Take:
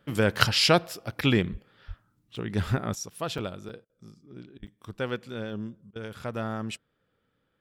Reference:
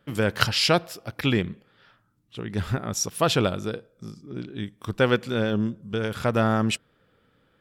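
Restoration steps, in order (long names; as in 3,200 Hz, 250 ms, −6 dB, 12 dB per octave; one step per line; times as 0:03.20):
0:01.51–0:01.63: high-pass filter 140 Hz 24 dB per octave
0:01.87–0:01.99: high-pass filter 140 Hz 24 dB per octave
0:04.58–0:04.70: high-pass filter 140 Hz 24 dB per octave
repair the gap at 0:02.36/0:03.38/0:03.69/0:04.67, 5 ms
repair the gap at 0:03.85/0:04.58/0:05.91, 45 ms
level 0 dB, from 0:02.95 +10.5 dB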